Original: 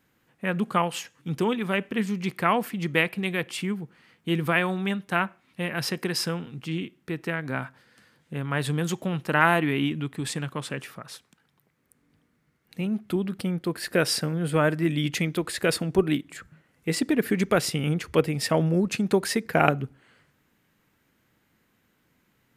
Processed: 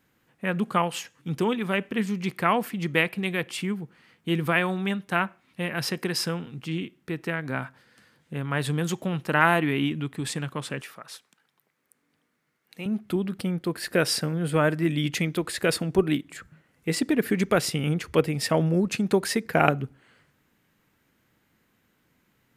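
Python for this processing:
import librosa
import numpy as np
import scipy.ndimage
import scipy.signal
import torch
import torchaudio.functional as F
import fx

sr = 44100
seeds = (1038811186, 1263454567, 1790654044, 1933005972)

y = fx.highpass(x, sr, hz=510.0, slope=6, at=(10.81, 12.86))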